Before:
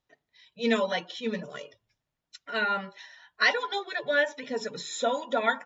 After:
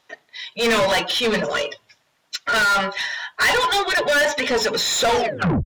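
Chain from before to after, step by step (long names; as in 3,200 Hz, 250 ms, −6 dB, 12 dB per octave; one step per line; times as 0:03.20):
turntable brake at the end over 0.57 s
downsampling to 32,000 Hz
mid-hump overdrive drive 31 dB, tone 5,900 Hz, clips at −11 dBFS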